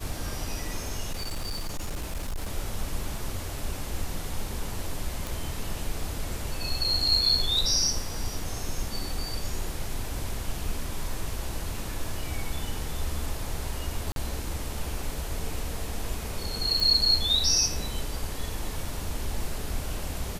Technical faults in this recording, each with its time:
0:01.12–0:02.49: clipping −27.5 dBFS
0:05.27: click
0:14.12–0:14.16: drop-out 42 ms
0:16.80: click

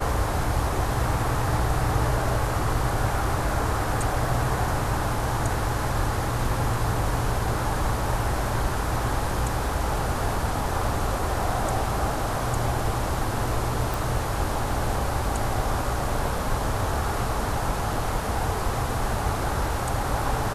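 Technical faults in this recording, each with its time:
0:13.94: click

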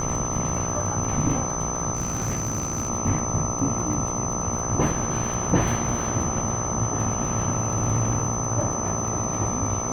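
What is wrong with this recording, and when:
mains buzz 60 Hz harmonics 22 −31 dBFS
surface crackle 18 per second −32 dBFS
whistle 6,100 Hz −29 dBFS
0:01.95–0:02.90: clipping −22 dBFS

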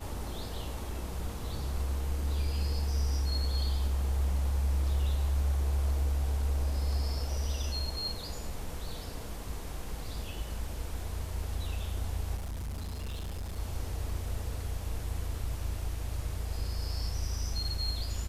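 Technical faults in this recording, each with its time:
0:12.36–0:13.60: clipping −34 dBFS

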